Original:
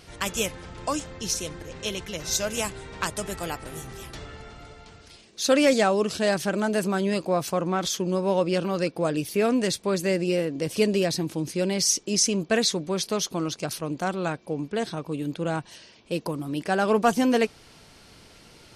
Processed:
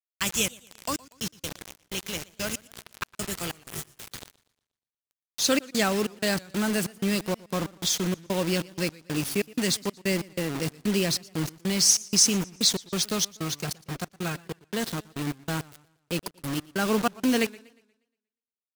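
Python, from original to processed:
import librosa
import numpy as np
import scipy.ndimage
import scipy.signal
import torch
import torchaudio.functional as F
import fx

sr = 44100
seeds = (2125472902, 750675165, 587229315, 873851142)

y = scipy.signal.sosfilt(scipy.signal.butter(2, 82.0, 'highpass', fs=sr, output='sos'), x)
y = fx.peak_eq(y, sr, hz=650.0, db=-10.5, octaves=2.1)
y = fx.quant_dither(y, sr, seeds[0], bits=6, dither='none')
y = fx.notch_comb(y, sr, f0_hz=290.0, at=(13.4, 14.58))
y = fx.step_gate(y, sr, bpm=94, pattern='.xx.xx.x', floor_db=-60.0, edge_ms=4.5)
y = fx.echo_warbled(y, sr, ms=119, feedback_pct=41, rate_hz=2.8, cents=141, wet_db=-22.0)
y = y * 10.0 ** (3.5 / 20.0)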